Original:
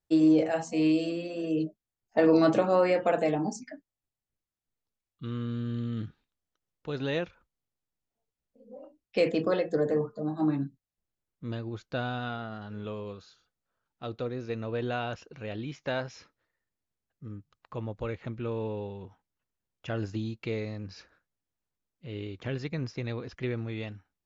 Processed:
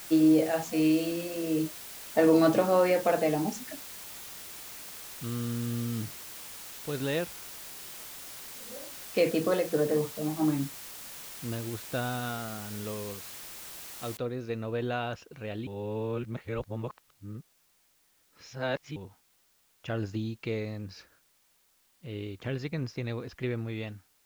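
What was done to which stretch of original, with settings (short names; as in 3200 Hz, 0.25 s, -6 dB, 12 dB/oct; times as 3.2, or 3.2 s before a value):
14.17 noise floor step -44 dB -68 dB
15.67–18.96 reverse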